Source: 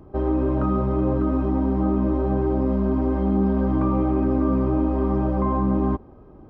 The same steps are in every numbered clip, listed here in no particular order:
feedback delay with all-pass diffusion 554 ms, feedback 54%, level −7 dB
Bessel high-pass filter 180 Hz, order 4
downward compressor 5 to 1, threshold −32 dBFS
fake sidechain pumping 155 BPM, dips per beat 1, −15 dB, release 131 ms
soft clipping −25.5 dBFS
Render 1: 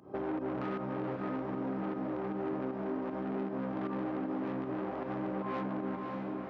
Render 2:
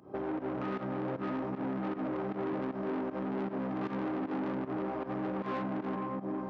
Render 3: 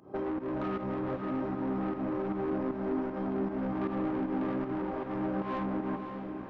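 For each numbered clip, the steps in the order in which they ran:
fake sidechain pumping, then soft clipping, then feedback delay with all-pass diffusion, then downward compressor, then Bessel high-pass filter
feedback delay with all-pass diffusion, then soft clipping, then fake sidechain pumping, then downward compressor, then Bessel high-pass filter
Bessel high-pass filter, then soft clipping, then downward compressor, then fake sidechain pumping, then feedback delay with all-pass diffusion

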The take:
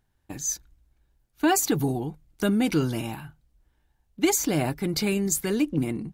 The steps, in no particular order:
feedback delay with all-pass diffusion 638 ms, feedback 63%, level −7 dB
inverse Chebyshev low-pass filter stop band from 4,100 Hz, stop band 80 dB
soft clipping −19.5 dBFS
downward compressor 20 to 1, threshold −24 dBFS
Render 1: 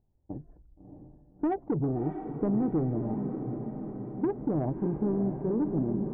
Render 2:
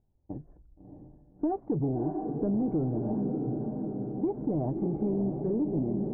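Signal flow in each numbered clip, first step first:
inverse Chebyshev low-pass filter, then soft clipping, then downward compressor, then feedback delay with all-pass diffusion
feedback delay with all-pass diffusion, then soft clipping, then inverse Chebyshev low-pass filter, then downward compressor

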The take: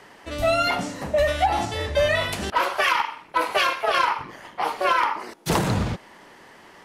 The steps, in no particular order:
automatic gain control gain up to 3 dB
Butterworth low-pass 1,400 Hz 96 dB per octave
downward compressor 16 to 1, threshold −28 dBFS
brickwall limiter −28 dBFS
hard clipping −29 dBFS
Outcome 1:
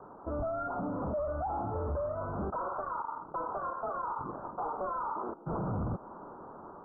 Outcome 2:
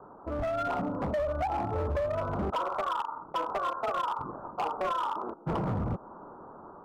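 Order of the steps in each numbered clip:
downward compressor, then automatic gain control, then hard clipping, then Butterworth low-pass, then brickwall limiter
Butterworth low-pass, then downward compressor, then hard clipping, then brickwall limiter, then automatic gain control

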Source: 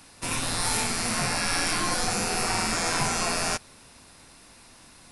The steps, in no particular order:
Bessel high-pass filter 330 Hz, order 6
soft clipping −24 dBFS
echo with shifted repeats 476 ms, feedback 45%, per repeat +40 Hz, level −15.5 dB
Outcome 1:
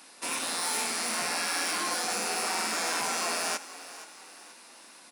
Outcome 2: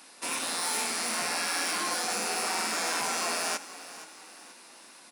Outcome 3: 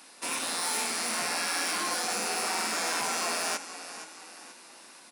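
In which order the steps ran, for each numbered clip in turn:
soft clipping, then Bessel high-pass filter, then echo with shifted repeats
soft clipping, then echo with shifted repeats, then Bessel high-pass filter
echo with shifted repeats, then soft clipping, then Bessel high-pass filter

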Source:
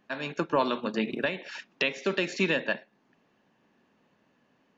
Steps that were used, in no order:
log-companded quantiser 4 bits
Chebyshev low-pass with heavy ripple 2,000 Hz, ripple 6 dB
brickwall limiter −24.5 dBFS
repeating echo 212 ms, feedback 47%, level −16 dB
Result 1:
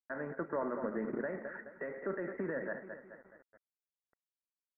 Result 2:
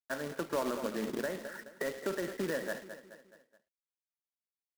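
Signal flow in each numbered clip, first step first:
repeating echo, then brickwall limiter, then log-companded quantiser, then Chebyshev low-pass with heavy ripple
Chebyshev low-pass with heavy ripple, then log-companded quantiser, then repeating echo, then brickwall limiter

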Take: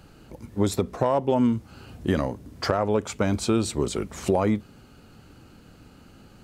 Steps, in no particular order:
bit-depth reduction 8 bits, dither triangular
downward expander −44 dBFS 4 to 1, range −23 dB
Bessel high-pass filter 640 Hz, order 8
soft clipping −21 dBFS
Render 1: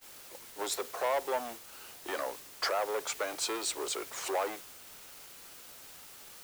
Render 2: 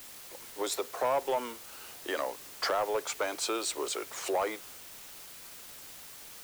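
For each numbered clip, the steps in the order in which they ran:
soft clipping, then Bessel high-pass filter, then bit-depth reduction, then downward expander
downward expander, then Bessel high-pass filter, then bit-depth reduction, then soft clipping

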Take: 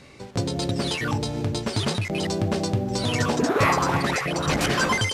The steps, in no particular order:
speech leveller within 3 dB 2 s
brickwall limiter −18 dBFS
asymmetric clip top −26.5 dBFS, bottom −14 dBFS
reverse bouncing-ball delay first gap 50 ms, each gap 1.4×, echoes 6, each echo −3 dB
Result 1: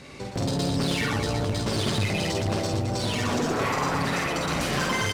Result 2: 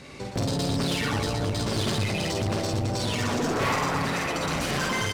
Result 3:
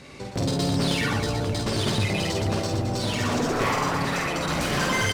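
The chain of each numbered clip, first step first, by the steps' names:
speech leveller, then brickwall limiter, then reverse bouncing-ball delay, then asymmetric clip
speech leveller, then reverse bouncing-ball delay, then asymmetric clip, then brickwall limiter
asymmetric clip, then brickwall limiter, then reverse bouncing-ball delay, then speech leveller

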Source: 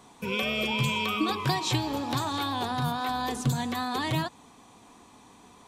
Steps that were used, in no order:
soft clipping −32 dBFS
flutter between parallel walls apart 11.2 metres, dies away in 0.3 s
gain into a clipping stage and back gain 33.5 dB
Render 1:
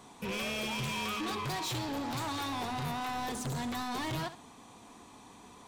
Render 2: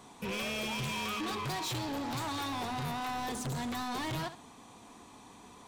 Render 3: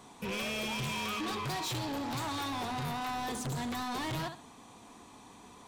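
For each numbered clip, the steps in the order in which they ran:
soft clipping, then gain into a clipping stage and back, then flutter between parallel walls
soft clipping, then flutter between parallel walls, then gain into a clipping stage and back
flutter between parallel walls, then soft clipping, then gain into a clipping stage and back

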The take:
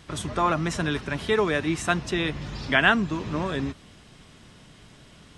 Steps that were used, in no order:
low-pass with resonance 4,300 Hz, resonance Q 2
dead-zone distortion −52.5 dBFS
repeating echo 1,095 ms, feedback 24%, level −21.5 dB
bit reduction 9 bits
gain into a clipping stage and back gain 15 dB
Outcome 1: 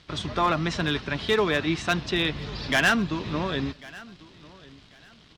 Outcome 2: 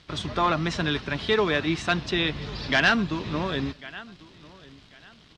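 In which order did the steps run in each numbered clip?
bit reduction, then dead-zone distortion, then low-pass with resonance, then gain into a clipping stage and back, then repeating echo
bit reduction, then dead-zone distortion, then repeating echo, then gain into a clipping stage and back, then low-pass with resonance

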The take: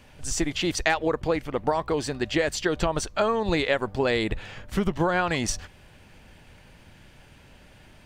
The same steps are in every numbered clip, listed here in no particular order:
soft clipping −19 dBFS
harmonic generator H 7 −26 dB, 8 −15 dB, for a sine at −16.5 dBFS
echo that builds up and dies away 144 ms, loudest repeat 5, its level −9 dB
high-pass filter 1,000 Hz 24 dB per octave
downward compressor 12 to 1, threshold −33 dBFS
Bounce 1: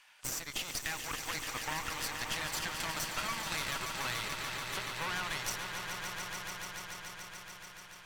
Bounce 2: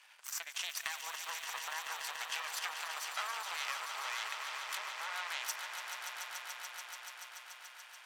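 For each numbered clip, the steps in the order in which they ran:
soft clipping, then high-pass filter, then harmonic generator, then downward compressor, then echo that builds up and dies away
downward compressor, then harmonic generator, then high-pass filter, then soft clipping, then echo that builds up and dies away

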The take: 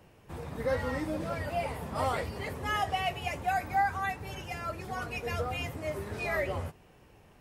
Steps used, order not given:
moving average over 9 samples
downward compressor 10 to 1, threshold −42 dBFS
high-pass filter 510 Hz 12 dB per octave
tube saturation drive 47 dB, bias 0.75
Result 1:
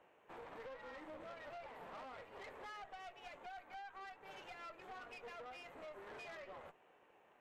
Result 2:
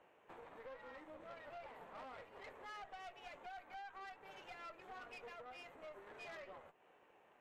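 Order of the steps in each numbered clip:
high-pass filter, then downward compressor, then moving average, then tube saturation
moving average, then downward compressor, then high-pass filter, then tube saturation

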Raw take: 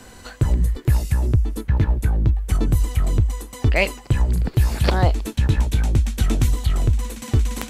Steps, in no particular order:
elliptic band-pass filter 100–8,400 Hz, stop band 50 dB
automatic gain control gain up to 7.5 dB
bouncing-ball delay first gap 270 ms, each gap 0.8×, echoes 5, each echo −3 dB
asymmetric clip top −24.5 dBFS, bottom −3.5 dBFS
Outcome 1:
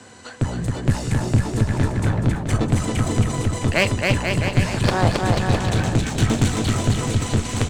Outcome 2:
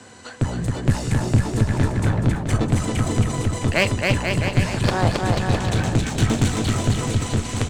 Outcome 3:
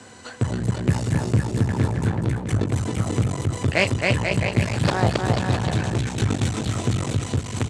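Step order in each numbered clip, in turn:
elliptic band-pass filter, then automatic gain control, then asymmetric clip, then bouncing-ball delay
automatic gain control, then elliptic band-pass filter, then asymmetric clip, then bouncing-ball delay
bouncing-ball delay, then automatic gain control, then asymmetric clip, then elliptic band-pass filter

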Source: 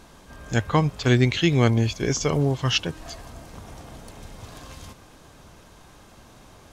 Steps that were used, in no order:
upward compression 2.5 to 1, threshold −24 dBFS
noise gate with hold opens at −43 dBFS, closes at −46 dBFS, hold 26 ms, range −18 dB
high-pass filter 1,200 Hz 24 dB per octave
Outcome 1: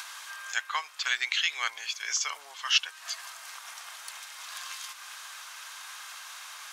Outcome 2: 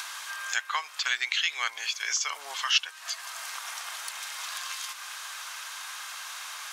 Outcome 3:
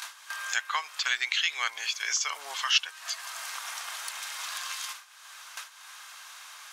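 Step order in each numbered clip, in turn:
noise gate with hold, then upward compression, then high-pass filter
noise gate with hold, then high-pass filter, then upward compression
high-pass filter, then noise gate with hold, then upward compression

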